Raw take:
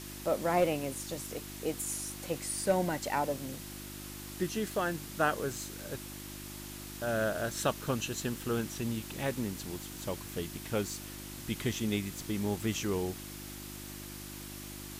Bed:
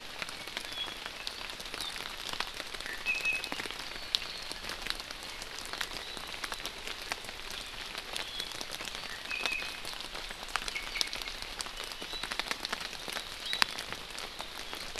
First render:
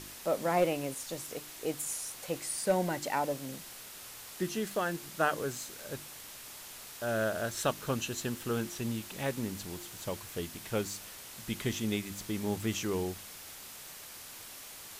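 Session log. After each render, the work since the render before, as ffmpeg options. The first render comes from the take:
-af "bandreject=f=50:t=h:w=4,bandreject=f=100:t=h:w=4,bandreject=f=150:t=h:w=4,bandreject=f=200:t=h:w=4,bandreject=f=250:t=h:w=4,bandreject=f=300:t=h:w=4,bandreject=f=350:t=h:w=4"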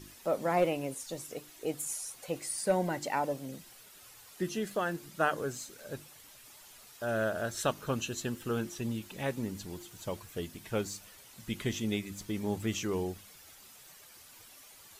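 -af "afftdn=nr=10:nf=-48"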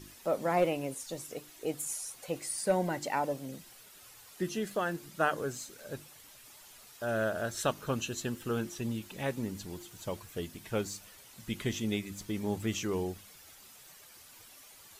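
-af anull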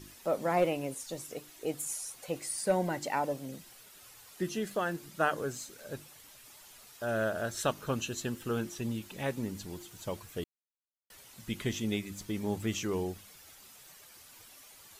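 -filter_complex "[0:a]asplit=3[s0][s1][s2];[s0]atrim=end=10.44,asetpts=PTS-STARTPTS,afade=t=out:st=10.436:d=0.004:c=hsin[s3];[s1]atrim=start=10.44:end=11.1,asetpts=PTS-STARTPTS,volume=0[s4];[s2]atrim=start=11.1,asetpts=PTS-STARTPTS,afade=t=in:d=0.004:c=hsin[s5];[s3][s4][s5]concat=n=3:v=0:a=1"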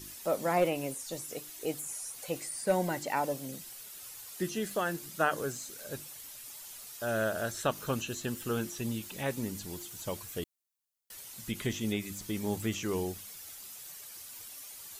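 -filter_complex "[0:a]acrossover=split=2700[s0][s1];[s1]acompressor=threshold=0.00501:ratio=4:attack=1:release=60[s2];[s0][s2]amix=inputs=2:normalize=0,highshelf=f=4400:g=10.5"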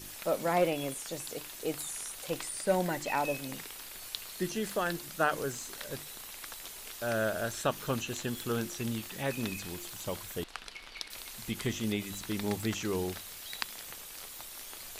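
-filter_complex "[1:a]volume=0.335[s0];[0:a][s0]amix=inputs=2:normalize=0"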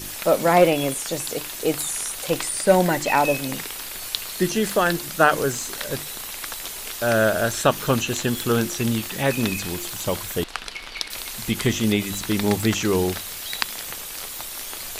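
-af "volume=3.98,alimiter=limit=0.891:level=0:latency=1"

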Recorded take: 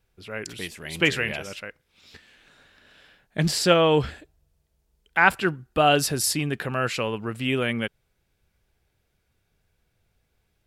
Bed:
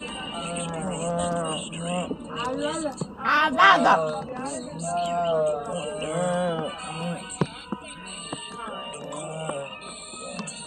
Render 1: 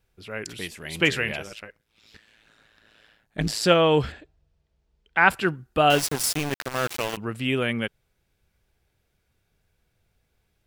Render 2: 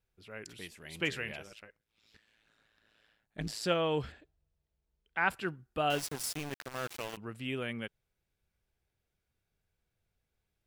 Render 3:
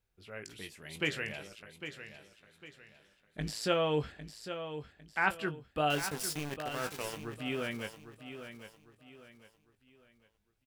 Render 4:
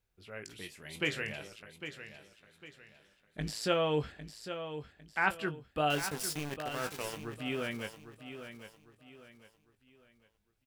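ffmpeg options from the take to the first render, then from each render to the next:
-filter_complex "[0:a]asplit=3[s0][s1][s2];[s0]afade=t=out:st=1.43:d=0.02[s3];[s1]tremolo=f=110:d=0.788,afade=t=in:st=1.43:d=0.02,afade=t=out:st=3.62:d=0.02[s4];[s2]afade=t=in:st=3.62:d=0.02[s5];[s3][s4][s5]amix=inputs=3:normalize=0,asettb=1/sr,asplit=3[s6][s7][s8];[s6]atrim=end=4.124[s9];[s7]atrim=start=4.12:end=5.29,asetpts=PTS-STARTPTS,afade=t=in:d=0.004:c=qsin,afade=t=out:st=1.166:d=0.004:c=qsin,lowpass=4600[s10];[s8]atrim=start=5.286[s11];[s9][s10]acrossfade=d=0.004:c1=hsin:c2=qsin[s12];[s12][s11]acrossfade=d=0.004:c1=qsin:c2=hsin,asettb=1/sr,asplit=3[s13][s14][s15];[s13]atrim=end=5.904[s16];[s14]atrim=start=5.9:end=7.17,asetpts=PTS-STARTPTS,afade=t=in:d=0.004:c=qsin,afade=t=out:st=1.266:d=0.004:c=qsin,aeval=exprs='val(0)*gte(abs(val(0)),0.0596)':c=same[s17];[s15]atrim=start=7.166[s18];[s16][s17]acrossfade=d=0.004:c1=hsin:c2=qsin[s19];[s19][s18]acrossfade=d=0.004:c1=qsin:c2=hsin"
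-af "volume=0.251"
-filter_complex "[0:a]asplit=2[s0][s1];[s1]adelay=20,volume=0.355[s2];[s0][s2]amix=inputs=2:normalize=0,aecho=1:1:803|1606|2409|3212:0.299|0.104|0.0366|0.0128"
-filter_complex "[0:a]asettb=1/sr,asplit=3[s0][s1][s2];[s0]atrim=end=0.554[s3];[s1]atrim=start=0.55:end=1.58,asetpts=PTS-STARTPTS,afade=t=in:d=0.004:c=qsin,afade=t=out:st=1.026:d=0.004:c=qsin,asplit=2[s4][s5];[s5]adelay=28,volume=0.251[s6];[s4][s6]amix=inputs=2:normalize=0,atrim=end_sample=45423[s7];[s2]atrim=start=1.576[s8];[s3][s7]acrossfade=d=0.004:c1=hsin:c2=qsin[s9];[s9][s8]acrossfade=d=0.004:c1=qsin:c2=hsin"

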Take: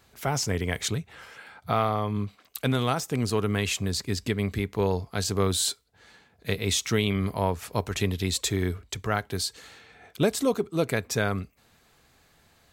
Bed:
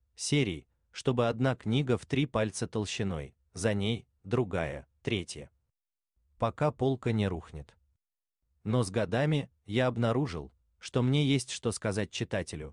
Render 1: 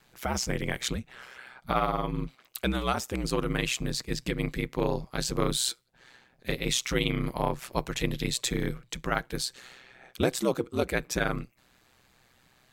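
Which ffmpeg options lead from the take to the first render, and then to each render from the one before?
-filter_complex "[0:a]aeval=exprs='val(0)*sin(2*PI*63*n/s)':c=same,acrossover=split=2800[s0][s1];[s0]crystalizer=i=3.5:c=0[s2];[s2][s1]amix=inputs=2:normalize=0"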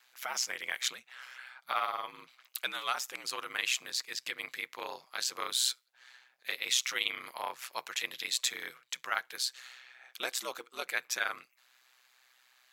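-af "highpass=1200,equalizer=f=8600:w=5.6:g=-5.5"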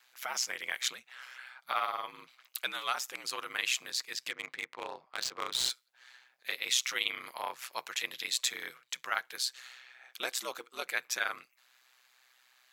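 -filter_complex "[0:a]asettb=1/sr,asplit=3[s0][s1][s2];[s0]atrim=end=4.294[s3];[s1]atrim=start=4.29:end=5.7,asetpts=PTS-STARTPTS,afade=t=in:d=0.004:c=qsin,afade=t=out:st=1.406:d=0.004:c=qsin,adynamicsmooth=sensitivity=8:basefreq=1700[s4];[s2]atrim=start=5.696[s5];[s3][s4]acrossfade=d=0.004:c1=hsin:c2=qsin[s6];[s6][s5]acrossfade=d=0.004:c1=qsin:c2=hsin"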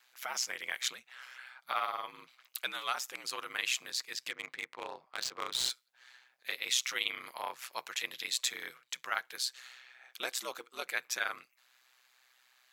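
-af "volume=0.841"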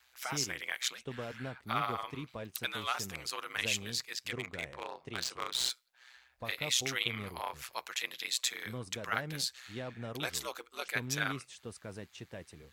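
-filter_complex "[1:a]volume=0.2[s0];[0:a][s0]amix=inputs=2:normalize=0"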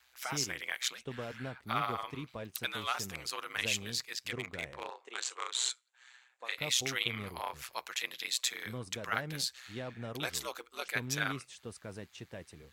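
-filter_complex "[0:a]asettb=1/sr,asplit=3[s0][s1][s2];[s0]atrim=end=4.904[s3];[s1]atrim=start=4.9:end=6.58,asetpts=PTS-STARTPTS,afade=t=in:d=0.004:c=qsin,afade=t=out:st=1.676:d=0.004:c=qsin,highpass=f=420:w=0.5412,highpass=f=420:w=1.3066,equalizer=f=630:t=q:w=4:g=-9,equalizer=f=5000:t=q:w=4:g=-8,equalizer=f=7400:t=q:w=4:g=8,lowpass=f=9000:w=0.5412,lowpass=f=9000:w=1.3066[s4];[s2]atrim=start=6.576[s5];[s3][s4]acrossfade=d=0.004:c1=hsin:c2=qsin[s6];[s6][s5]acrossfade=d=0.004:c1=qsin:c2=hsin"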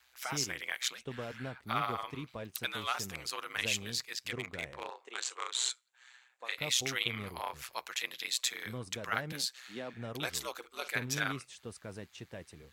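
-filter_complex "[0:a]asettb=1/sr,asplit=3[s0][s1][s2];[s0]atrim=end=9.324[s3];[s1]atrim=start=9.32:end=9.94,asetpts=PTS-STARTPTS,afade=t=in:d=0.004:c=qsin,afade=t=out:st=0.616:d=0.004:c=qsin,highpass=f=170:w=0.5412,highpass=f=170:w=1.3066[s4];[s2]atrim=start=9.936[s5];[s3][s4]acrossfade=d=0.004:c1=hsin:c2=qsin[s6];[s6][s5]acrossfade=d=0.004:c1=qsin:c2=hsin,asettb=1/sr,asplit=3[s7][s8][s9];[s7]atrim=end=10.574[s10];[s8]atrim=start=10.57:end=11.24,asetpts=PTS-STARTPTS,afade=t=in:d=0.004:c=qsin,afade=t=out:st=0.666:d=0.004:c=qsin,asplit=2[s11][s12];[s12]adelay=50,volume=0.224[s13];[s11][s13]amix=inputs=2:normalize=0,atrim=end_sample=29547[s14];[s9]atrim=start=11.236[s15];[s10][s14]acrossfade=d=0.004:c1=hsin:c2=qsin[s16];[s16][s15]acrossfade=d=0.004:c1=qsin:c2=hsin"

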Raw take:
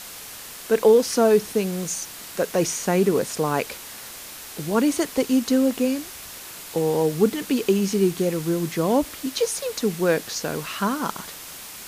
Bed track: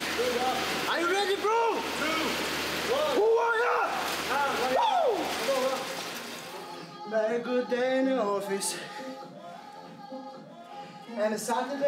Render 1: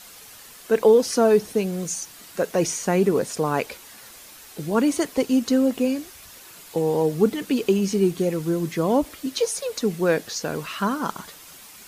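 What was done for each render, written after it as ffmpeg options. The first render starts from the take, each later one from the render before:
-af "afftdn=nr=8:nf=-39"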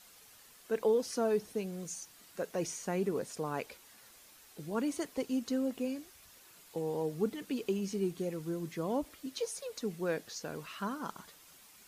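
-af "volume=0.211"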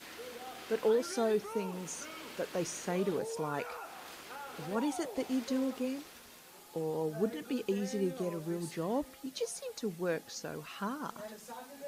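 -filter_complex "[1:a]volume=0.126[s0];[0:a][s0]amix=inputs=2:normalize=0"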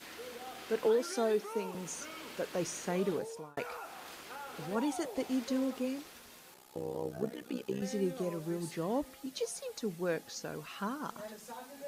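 -filter_complex "[0:a]asettb=1/sr,asplit=3[s0][s1][s2];[s0]atrim=end=0.864[s3];[s1]atrim=start=0.86:end=1.75,asetpts=PTS-STARTPTS,afade=t=in:d=0.004:c=qsin,afade=t=out:st=0.886:d=0.004:c=qsin,highpass=f=210:w=0.5412,highpass=f=210:w=1.3066[s4];[s2]atrim=start=1.746[s5];[s3][s4]acrossfade=d=0.004:c1=hsin:c2=qsin[s6];[s6][s5]acrossfade=d=0.004:c1=qsin:c2=hsin,asettb=1/sr,asplit=3[s7][s8][s9];[s7]atrim=end=6.544[s10];[s8]atrim=start=6.54:end=7.82,asetpts=PTS-STARTPTS,afade=t=in:d=0.004:c=qsin,afade=t=out:st=1.276:d=0.004:c=qsin,tremolo=f=64:d=0.857[s11];[s9]atrim=start=7.816[s12];[s10][s11]acrossfade=d=0.004:c1=hsin:c2=qsin[s13];[s13][s12]acrossfade=d=0.004:c1=qsin:c2=hsin,asplit=2[s14][s15];[s14]atrim=end=3.57,asetpts=PTS-STARTPTS,afade=t=out:st=3.12:d=0.45[s16];[s15]atrim=start=3.57,asetpts=PTS-STARTPTS,afade=t=in:d=0.004:c=hsin[s17];[s16][s17]concat=n=2:v=0:a=1"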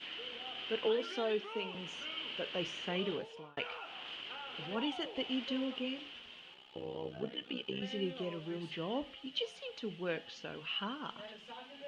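-af "lowpass=f=3000:t=q:w=11,flanger=delay=6.6:depth=6:regen=-82:speed=0.26:shape=sinusoidal"

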